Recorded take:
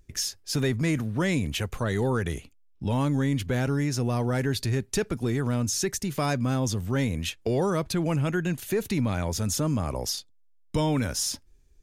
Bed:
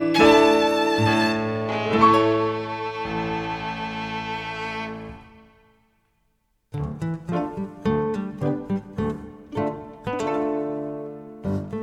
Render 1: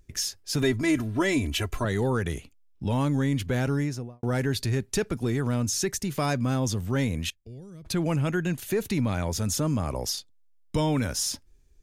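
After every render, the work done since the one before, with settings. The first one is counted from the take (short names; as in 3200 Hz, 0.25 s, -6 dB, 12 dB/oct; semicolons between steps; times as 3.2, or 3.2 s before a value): 0.62–1.85 comb 3 ms, depth 82%; 3.74–4.23 studio fade out; 7.3–7.85 passive tone stack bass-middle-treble 10-0-1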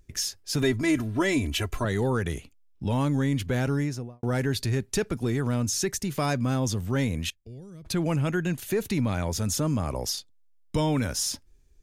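nothing audible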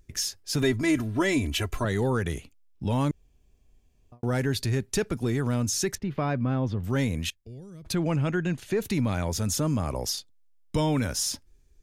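3.11–4.12 room tone; 5.95–6.84 air absorption 380 m; 7.95–8.82 air absorption 69 m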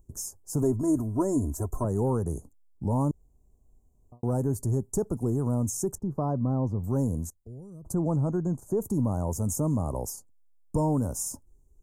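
elliptic band-stop 990–7300 Hz, stop band 80 dB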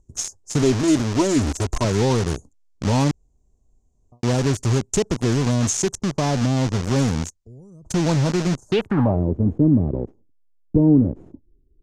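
in parallel at +2 dB: bit-crush 5-bit; on the sum: low-pass sweep 6200 Hz -> 340 Hz, 8.64–9.24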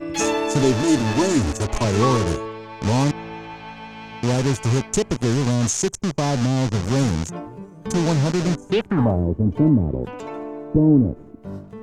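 add bed -7.5 dB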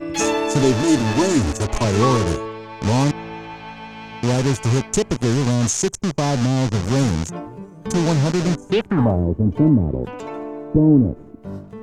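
gain +1.5 dB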